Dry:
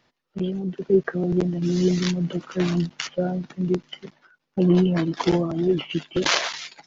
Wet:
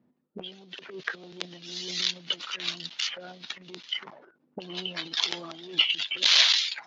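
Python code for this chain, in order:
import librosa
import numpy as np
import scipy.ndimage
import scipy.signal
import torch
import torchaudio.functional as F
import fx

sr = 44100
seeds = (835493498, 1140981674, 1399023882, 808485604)

y = fx.transient(x, sr, attack_db=-8, sustain_db=11)
y = fx.auto_wah(y, sr, base_hz=220.0, top_hz=3700.0, q=2.5, full_db=-26.0, direction='up')
y = F.gain(torch.from_numpy(y), 7.5).numpy()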